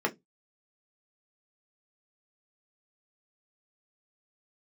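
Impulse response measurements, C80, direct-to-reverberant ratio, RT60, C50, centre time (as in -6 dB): 33.5 dB, 1.0 dB, 0.15 s, 22.5 dB, 8 ms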